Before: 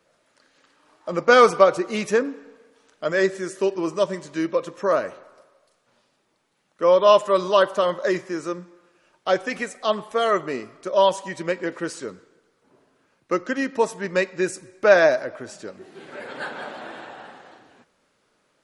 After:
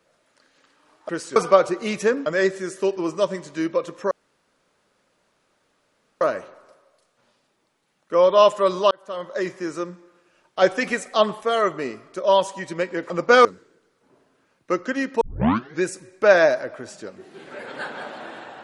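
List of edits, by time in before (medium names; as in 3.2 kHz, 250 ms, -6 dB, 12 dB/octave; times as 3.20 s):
1.09–1.44 s: swap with 11.79–12.06 s
2.34–3.05 s: delete
4.90 s: insert room tone 2.10 s
7.60–8.34 s: fade in
9.31–10.10 s: gain +4 dB
13.82 s: tape start 0.61 s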